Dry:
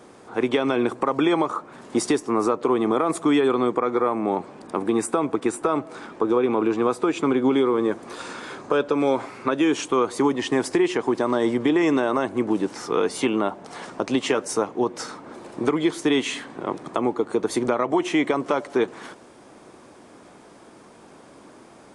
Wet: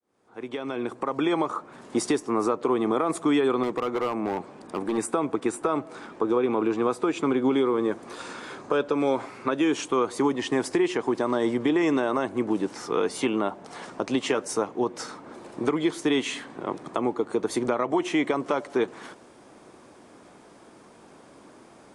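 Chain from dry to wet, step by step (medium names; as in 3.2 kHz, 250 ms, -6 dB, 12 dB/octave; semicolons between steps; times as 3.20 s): fade-in on the opening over 1.49 s; 3.63–4.98 s: hard clipper -18.5 dBFS, distortion -22 dB; trim -3 dB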